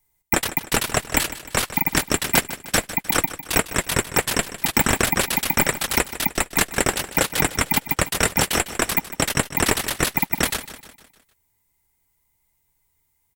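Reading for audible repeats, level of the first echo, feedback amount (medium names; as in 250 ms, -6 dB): 4, -14.0 dB, 48%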